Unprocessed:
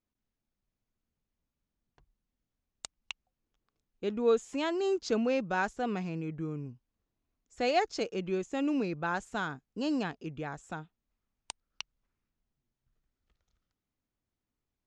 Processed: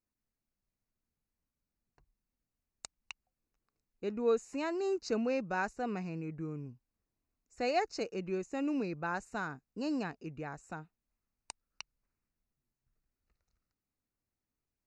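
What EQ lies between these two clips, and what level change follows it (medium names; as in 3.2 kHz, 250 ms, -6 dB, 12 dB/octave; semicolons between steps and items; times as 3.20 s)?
Butterworth band-stop 3.3 kHz, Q 3.3; -3.5 dB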